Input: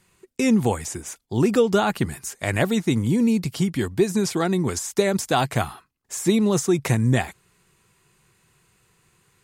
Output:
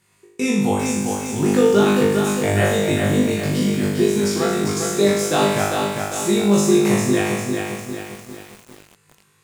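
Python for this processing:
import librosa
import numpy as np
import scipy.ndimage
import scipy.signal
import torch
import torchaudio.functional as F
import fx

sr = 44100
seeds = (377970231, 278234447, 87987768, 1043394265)

p1 = fx.highpass(x, sr, hz=96.0, slope=6)
p2 = p1 + fx.room_flutter(p1, sr, wall_m=3.4, rt60_s=0.9, dry=0)
p3 = fx.echo_crushed(p2, sr, ms=400, feedback_pct=55, bits=6, wet_db=-4)
y = p3 * 10.0 ** (-2.5 / 20.0)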